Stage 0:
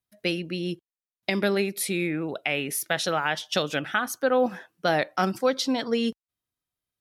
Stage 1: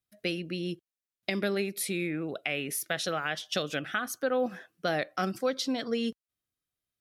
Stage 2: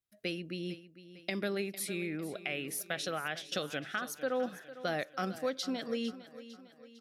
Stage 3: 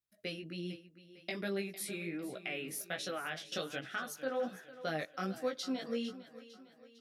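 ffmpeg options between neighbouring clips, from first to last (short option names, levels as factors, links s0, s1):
-filter_complex "[0:a]equalizer=f=910:t=o:w=0.2:g=-13.5,asplit=2[s0][s1];[s1]acompressor=threshold=0.0251:ratio=6,volume=1[s2];[s0][s2]amix=inputs=2:normalize=0,volume=0.422"
-af "aecho=1:1:453|906|1359|1812|2265:0.178|0.0889|0.0445|0.0222|0.0111,volume=0.562"
-af "flanger=delay=15.5:depth=3.8:speed=1.3"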